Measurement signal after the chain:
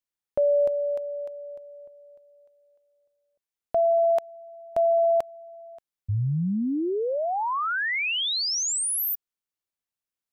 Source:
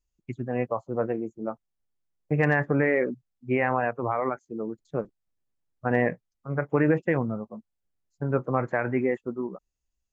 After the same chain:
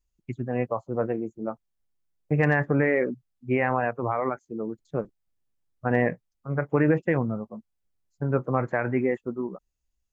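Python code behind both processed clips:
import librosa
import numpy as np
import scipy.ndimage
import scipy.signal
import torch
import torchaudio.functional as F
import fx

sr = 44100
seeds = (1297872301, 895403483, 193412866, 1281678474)

y = fx.low_shelf(x, sr, hz=150.0, db=3.5)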